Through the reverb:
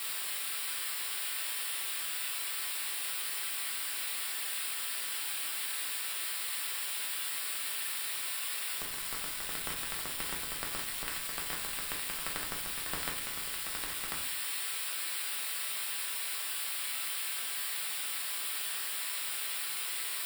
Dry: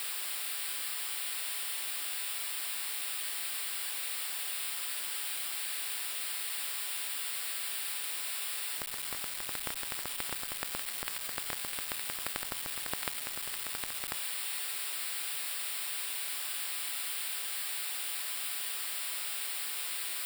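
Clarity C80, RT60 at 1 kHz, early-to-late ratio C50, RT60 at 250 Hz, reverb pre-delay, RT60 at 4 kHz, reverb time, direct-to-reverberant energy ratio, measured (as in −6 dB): 12.0 dB, 0.40 s, 8.0 dB, 0.75 s, 5 ms, 0.35 s, 0.45 s, −1.0 dB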